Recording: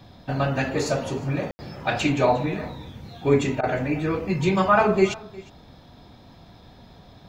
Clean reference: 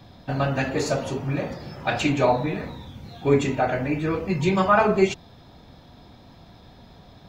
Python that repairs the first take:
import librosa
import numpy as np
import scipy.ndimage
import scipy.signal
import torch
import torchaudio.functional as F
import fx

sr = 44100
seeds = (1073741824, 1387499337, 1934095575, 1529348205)

y = fx.fix_ambience(x, sr, seeds[0], print_start_s=5.75, print_end_s=6.25, start_s=1.51, end_s=1.59)
y = fx.fix_interpolate(y, sr, at_s=(3.61,), length_ms=22.0)
y = fx.fix_echo_inverse(y, sr, delay_ms=357, level_db=-21.5)